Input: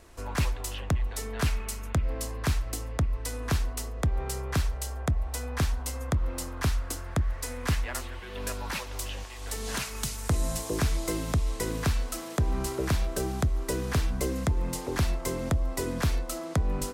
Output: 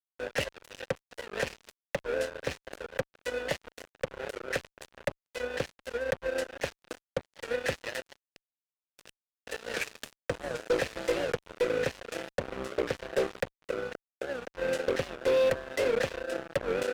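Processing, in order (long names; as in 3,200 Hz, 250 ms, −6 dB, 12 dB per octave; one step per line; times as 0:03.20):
notch filter 940 Hz, Q 10
noise gate with hold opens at −29 dBFS
0:13.52–0:14.52: output level in coarse steps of 18 dB
bucket-brigade delay 560 ms, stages 2,048, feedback 61%, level −19 dB
rotating-speaker cabinet horn 7 Hz, later 0.85 Hz, at 0:08.99
formant filter e
0:08.21–0:09.36: gate with flip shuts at −46 dBFS, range −25 dB
fuzz pedal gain 42 dB, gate −50 dBFS
wow of a warped record 78 rpm, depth 160 cents
level −7.5 dB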